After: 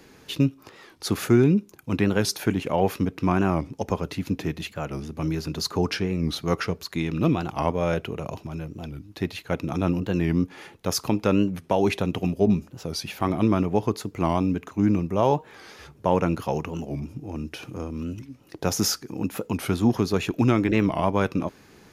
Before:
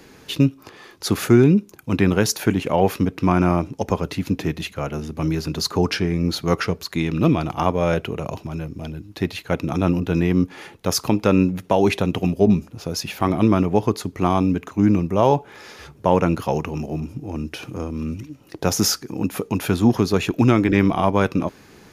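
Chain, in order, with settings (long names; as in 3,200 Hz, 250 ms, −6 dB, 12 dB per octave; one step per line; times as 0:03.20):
wow of a warped record 45 rpm, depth 160 cents
level −4.5 dB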